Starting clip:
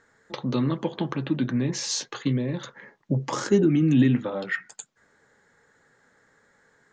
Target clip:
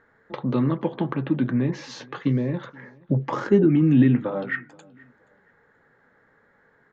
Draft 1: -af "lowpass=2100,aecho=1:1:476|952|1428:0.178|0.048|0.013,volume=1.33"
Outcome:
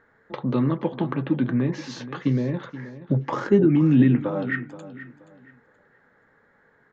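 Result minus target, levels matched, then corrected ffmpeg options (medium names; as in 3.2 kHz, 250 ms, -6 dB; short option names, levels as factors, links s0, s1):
echo-to-direct +11 dB
-af "lowpass=2100,aecho=1:1:476|952:0.0501|0.0135,volume=1.33"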